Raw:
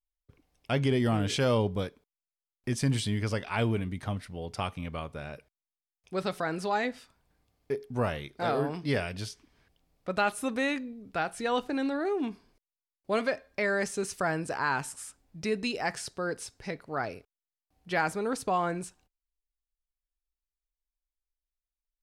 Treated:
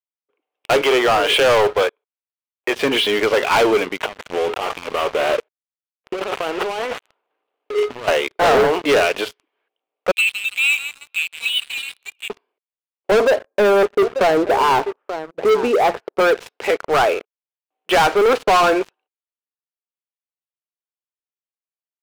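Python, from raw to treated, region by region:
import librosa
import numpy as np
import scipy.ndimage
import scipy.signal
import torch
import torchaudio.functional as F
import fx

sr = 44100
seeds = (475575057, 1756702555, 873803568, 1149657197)

y = fx.chain(x, sr, fx.clip_hard(threshold_db=-21.0),
    fx.bandpass_edges(low_hz=490.0, high_hz=5200.0), at=(0.81, 2.74))
y = fx.chain(y, sr, fx.dead_time(dead_ms=0.26),
    fx.over_compress(threshold_db=-42.0, ratio=-1.0), at=(4.02, 8.08))
y = fx.chain(y, sr, fx.brickwall_highpass(low_hz=2200.0),
    fx.echo_crushed(ms=162, feedback_pct=55, bits=9, wet_db=-12), at=(10.11, 12.3))
y = fx.chain(y, sr, fx.lowpass(hz=1200.0, slope=12),
    fx.tilt_shelf(db=5.5, hz=650.0),
    fx.echo_single(ms=884, db=-19.0), at=(13.11, 16.2))
y = scipy.signal.sosfilt(scipy.signal.cheby1(3, 1.0, [400.0, 3000.0], 'bandpass', fs=sr, output='sos'), y)
y = fx.peak_eq(y, sr, hz=1800.0, db=-4.0, octaves=0.56)
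y = fx.leveller(y, sr, passes=5)
y = F.gain(torch.from_numpy(y), 7.0).numpy()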